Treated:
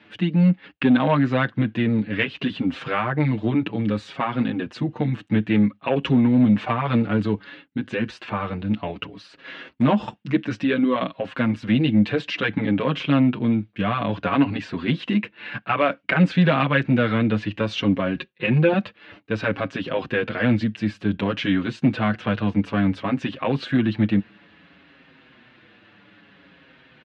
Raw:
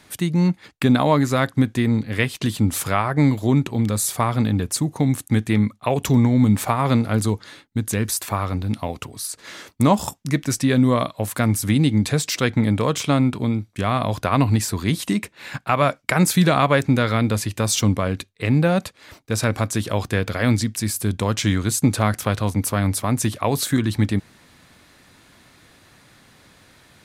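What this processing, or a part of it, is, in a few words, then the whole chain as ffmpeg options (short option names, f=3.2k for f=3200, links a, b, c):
barber-pole flanger into a guitar amplifier: -filter_complex "[0:a]asettb=1/sr,asplit=3[a][b][c];[a]atrim=end=18.154[d];[b]atrim=start=18.15:end=18.73,asetpts=PTS-STARTPTS,afade=t=in:d=0.004:c=qsin,afade=t=out:st=0.576:d=0.004:c=qsin,aecho=1:1:5.5:0.8,atrim=end_sample=25578[e];[c]atrim=start=18.726[f];[d][e]acrossfade=d=0.004:c1=hsin:c2=qsin[g];[g][f]acrossfade=d=0.004:c1=qsin:c2=hsin,asplit=2[h][i];[i]adelay=6.4,afreqshift=-0.58[j];[h][j]amix=inputs=2:normalize=1,asoftclip=type=tanh:threshold=-12dB,highpass=86,equalizer=f=91:t=q:w=4:g=-5,equalizer=f=200:t=q:w=4:g=6,equalizer=f=300:t=q:w=4:g=6,equalizer=f=500:t=q:w=4:g=4,equalizer=f=1.6k:t=q:w=4:g=6,equalizer=f=2.8k:t=q:w=4:g=9,lowpass=f=3.5k:w=0.5412,lowpass=f=3.5k:w=1.3066"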